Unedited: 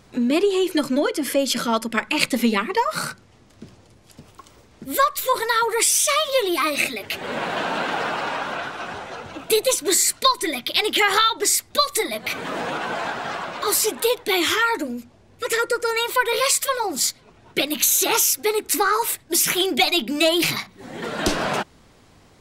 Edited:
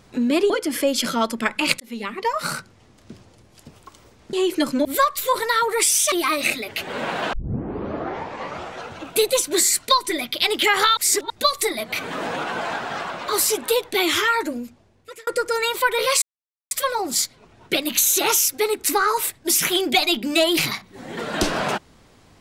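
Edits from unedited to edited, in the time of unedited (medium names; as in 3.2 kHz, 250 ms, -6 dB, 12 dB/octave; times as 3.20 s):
0.50–1.02 s: move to 4.85 s
2.32–2.96 s: fade in
6.12–6.46 s: delete
7.67 s: tape start 1.47 s
11.31–11.64 s: reverse
14.90–15.61 s: fade out
16.56 s: insert silence 0.49 s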